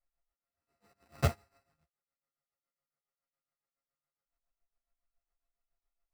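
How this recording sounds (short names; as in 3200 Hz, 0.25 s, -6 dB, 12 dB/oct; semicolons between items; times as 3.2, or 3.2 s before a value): a buzz of ramps at a fixed pitch in blocks of 64 samples; tremolo triangle 7.2 Hz, depth 85%; aliases and images of a low sample rate 3300 Hz, jitter 0%; a shimmering, thickened sound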